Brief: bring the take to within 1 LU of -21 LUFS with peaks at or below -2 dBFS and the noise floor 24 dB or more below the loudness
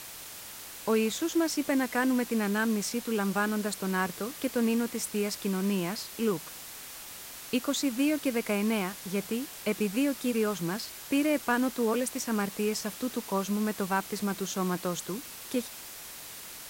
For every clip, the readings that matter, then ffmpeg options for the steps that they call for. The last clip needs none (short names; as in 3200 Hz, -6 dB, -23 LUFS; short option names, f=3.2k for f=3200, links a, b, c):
noise floor -44 dBFS; noise floor target -54 dBFS; loudness -30.0 LUFS; peak -15.0 dBFS; loudness target -21.0 LUFS
-> -af "afftdn=nr=10:nf=-44"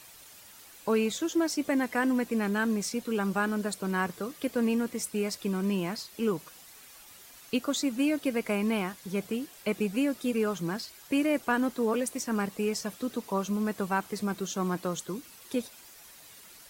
noise floor -52 dBFS; noise floor target -55 dBFS
-> -af "afftdn=nr=6:nf=-52"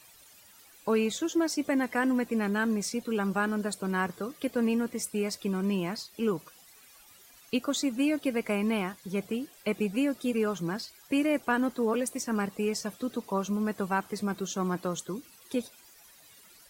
noise floor -56 dBFS; loudness -30.5 LUFS; peak -15.5 dBFS; loudness target -21.0 LUFS
-> -af "volume=9.5dB"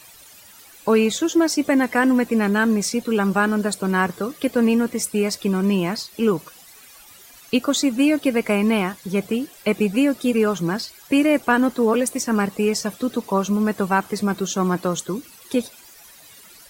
loudness -21.0 LUFS; peak -6.0 dBFS; noise floor -47 dBFS